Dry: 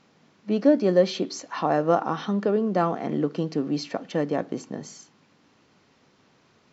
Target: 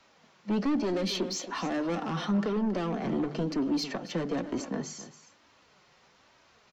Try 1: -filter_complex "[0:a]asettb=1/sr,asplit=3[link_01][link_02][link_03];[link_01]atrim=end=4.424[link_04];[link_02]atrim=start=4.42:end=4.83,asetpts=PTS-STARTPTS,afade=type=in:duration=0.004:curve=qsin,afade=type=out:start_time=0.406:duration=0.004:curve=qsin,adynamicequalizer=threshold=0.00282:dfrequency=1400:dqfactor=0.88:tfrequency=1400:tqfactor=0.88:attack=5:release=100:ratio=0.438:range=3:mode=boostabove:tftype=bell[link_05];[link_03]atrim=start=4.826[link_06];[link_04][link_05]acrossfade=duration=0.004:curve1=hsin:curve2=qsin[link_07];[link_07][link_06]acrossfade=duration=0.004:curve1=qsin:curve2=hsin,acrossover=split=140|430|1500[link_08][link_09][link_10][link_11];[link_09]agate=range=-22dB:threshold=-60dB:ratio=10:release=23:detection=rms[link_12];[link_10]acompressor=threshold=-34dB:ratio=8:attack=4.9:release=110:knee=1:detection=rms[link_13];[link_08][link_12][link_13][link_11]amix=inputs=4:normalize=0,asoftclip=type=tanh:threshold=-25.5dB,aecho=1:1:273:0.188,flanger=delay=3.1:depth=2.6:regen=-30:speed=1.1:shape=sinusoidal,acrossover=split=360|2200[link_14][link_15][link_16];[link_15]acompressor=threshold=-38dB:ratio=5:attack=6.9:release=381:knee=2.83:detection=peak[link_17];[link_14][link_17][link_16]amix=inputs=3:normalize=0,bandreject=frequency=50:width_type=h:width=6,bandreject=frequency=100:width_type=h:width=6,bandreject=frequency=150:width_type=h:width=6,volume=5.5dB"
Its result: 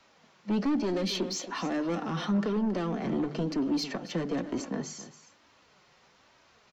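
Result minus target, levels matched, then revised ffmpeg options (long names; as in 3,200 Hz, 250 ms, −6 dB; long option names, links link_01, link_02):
downward compressor: peak gain reduction +5.5 dB
-filter_complex "[0:a]asettb=1/sr,asplit=3[link_01][link_02][link_03];[link_01]atrim=end=4.424[link_04];[link_02]atrim=start=4.42:end=4.83,asetpts=PTS-STARTPTS,afade=type=in:duration=0.004:curve=qsin,afade=type=out:start_time=0.406:duration=0.004:curve=qsin,adynamicequalizer=threshold=0.00282:dfrequency=1400:dqfactor=0.88:tfrequency=1400:tqfactor=0.88:attack=5:release=100:ratio=0.438:range=3:mode=boostabove:tftype=bell[link_05];[link_03]atrim=start=4.826[link_06];[link_04][link_05]acrossfade=duration=0.004:curve1=hsin:curve2=qsin[link_07];[link_07][link_06]acrossfade=duration=0.004:curve1=qsin:curve2=hsin,acrossover=split=140|430|1500[link_08][link_09][link_10][link_11];[link_09]agate=range=-22dB:threshold=-60dB:ratio=10:release=23:detection=rms[link_12];[link_10]acompressor=threshold=-27.5dB:ratio=8:attack=4.9:release=110:knee=1:detection=rms[link_13];[link_08][link_12][link_13][link_11]amix=inputs=4:normalize=0,asoftclip=type=tanh:threshold=-25.5dB,aecho=1:1:273:0.188,flanger=delay=3.1:depth=2.6:regen=-30:speed=1.1:shape=sinusoidal,acrossover=split=360|2200[link_14][link_15][link_16];[link_15]acompressor=threshold=-38dB:ratio=5:attack=6.9:release=381:knee=2.83:detection=peak[link_17];[link_14][link_17][link_16]amix=inputs=3:normalize=0,bandreject=frequency=50:width_type=h:width=6,bandreject=frequency=100:width_type=h:width=6,bandreject=frequency=150:width_type=h:width=6,volume=5.5dB"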